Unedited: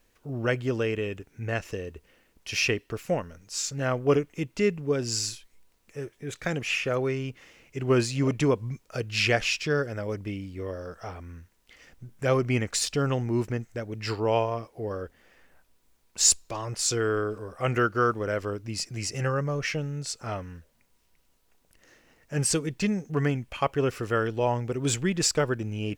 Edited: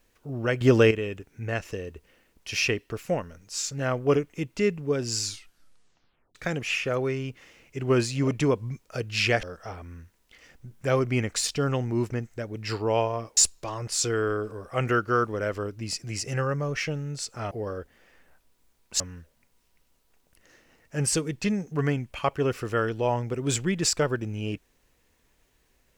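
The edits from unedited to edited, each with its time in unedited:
0.61–0.91 gain +9.5 dB
5.22 tape stop 1.13 s
9.43–10.81 cut
14.75–16.24 move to 20.38

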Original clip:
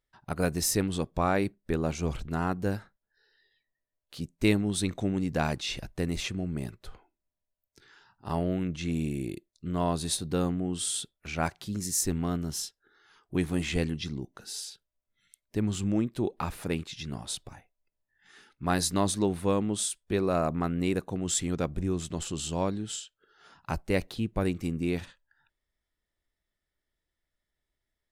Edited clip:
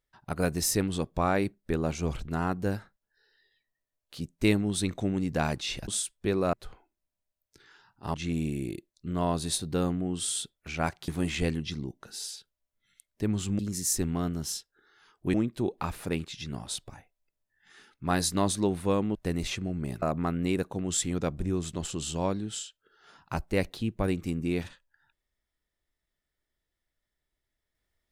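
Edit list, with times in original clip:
5.88–6.75 swap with 19.74–20.39
8.36–8.73 cut
11.67–13.42 move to 15.93

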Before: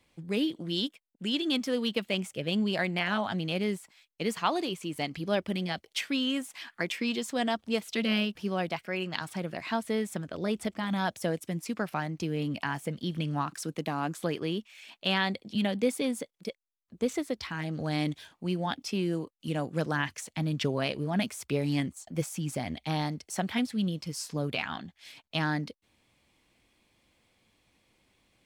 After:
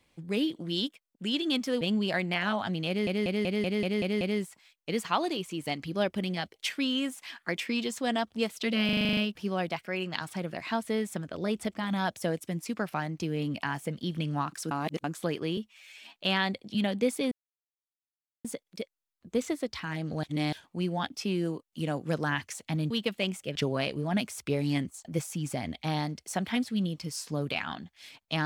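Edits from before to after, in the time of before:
1.81–2.46 move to 20.58
3.53 stutter 0.19 s, 8 plays
8.17 stutter 0.04 s, 9 plays
13.71–14.04 reverse
14.57–14.96 stretch 1.5×
16.12 insert silence 1.13 s
17.91–18.2 reverse

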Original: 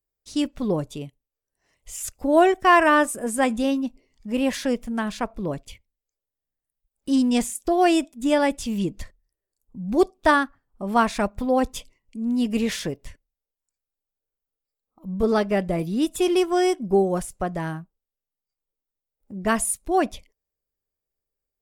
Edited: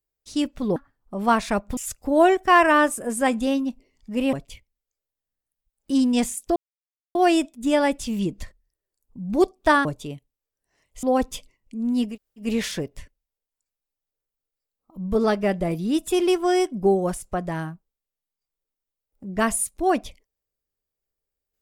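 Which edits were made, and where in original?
0.76–1.94 swap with 10.44–11.45
4.5–5.51 cut
7.74 insert silence 0.59 s
12.52 insert room tone 0.34 s, crossfade 0.16 s

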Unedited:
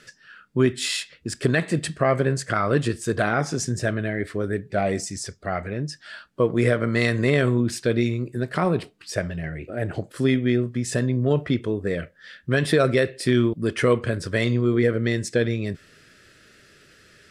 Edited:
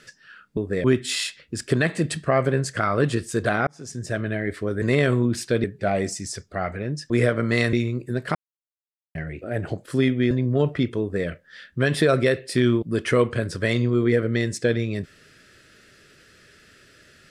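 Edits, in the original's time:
3.4–4.04 fade in
6.01–6.54 cut
7.17–7.99 move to 4.55
8.61–9.41 mute
10.57–11.02 cut
11.71–11.98 copy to 0.57

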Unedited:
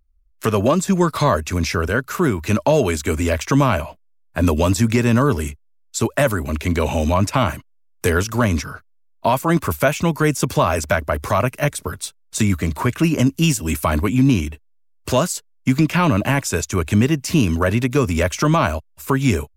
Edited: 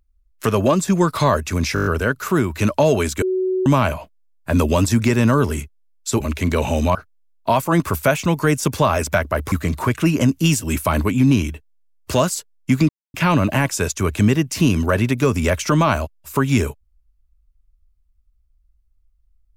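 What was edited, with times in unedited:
1.74 stutter 0.02 s, 7 plays
3.1–3.54 bleep 373 Hz -17 dBFS
6.08–6.44 cut
7.19–8.72 cut
11.29–12.5 cut
15.87 insert silence 0.25 s

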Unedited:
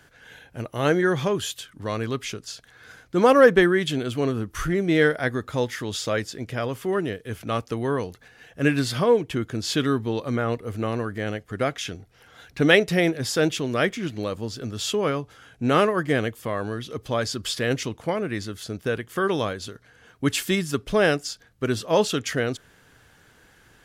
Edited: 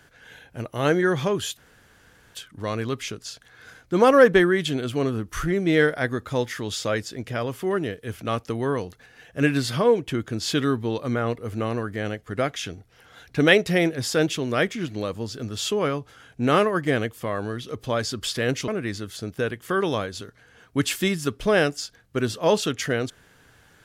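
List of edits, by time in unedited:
1.57 insert room tone 0.78 s
17.9–18.15 cut

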